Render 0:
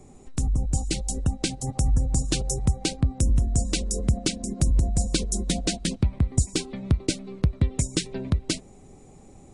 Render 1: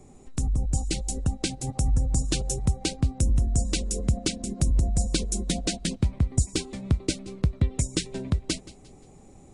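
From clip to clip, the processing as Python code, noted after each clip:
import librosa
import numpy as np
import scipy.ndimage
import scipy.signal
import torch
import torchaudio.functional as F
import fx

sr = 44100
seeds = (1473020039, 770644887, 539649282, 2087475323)

y = fx.echo_feedback(x, sr, ms=175, feedback_pct=38, wet_db=-19.5)
y = y * 10.0 ** (-1.5 / 20.0)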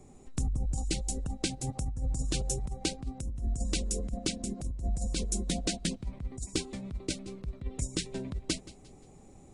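y = fx.over_compress(x, sr, threshold_db=-24.0, ratio=-0.5)
y = y * 10.0 ** (-5.5 / 20.0)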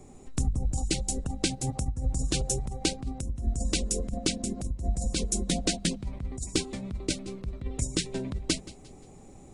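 y = fx.hum_notches(x, sr, base_hz=50, count=4)
y = y * 10.0 ** (4.5 / 20.0)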